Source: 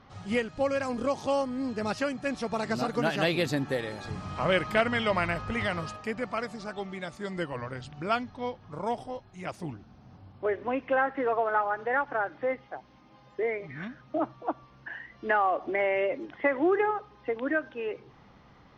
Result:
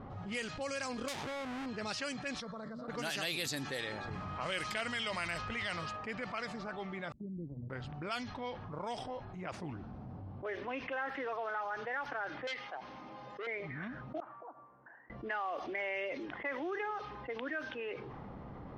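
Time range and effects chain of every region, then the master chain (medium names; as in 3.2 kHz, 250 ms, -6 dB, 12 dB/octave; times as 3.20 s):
1.08–1.66 s: square wave that keeps the level + compression 12:1, threshold -32 dBFS
2.40–2.88 s: peaking EQ 3.6 kHz +9.5 dB 0.93 oct + static phaser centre 530 Hz, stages 8 + level held to a coarse grid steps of 23 dB
7.12–7.70 s: inverse Chebyshev low-pass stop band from 1.7 kHz, stop band 80 dB + gate -43 dBFS, range -26 dB
12.47–13.47 s: tilt EQ +4 dB/octave + transformer saturation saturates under 1.8 kHz
14.20–15.10 s: differentiator + compression 4:1, threshold -57 dBFS + low-pass 1.4 kHz 24 dB/octave
whole clip: level-controlled noise filter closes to 570 Hz, open at -22.5 dBFS; pre-emphasis filter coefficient 0.9; level flattener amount 70%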